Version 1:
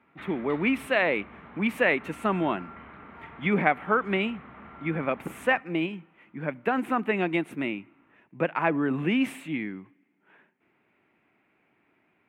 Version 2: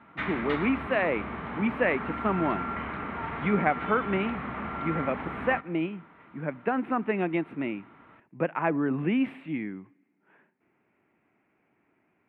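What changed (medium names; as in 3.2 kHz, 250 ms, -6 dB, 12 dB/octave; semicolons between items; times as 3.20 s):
speech: add distance through air 450 m; background +12.0 dB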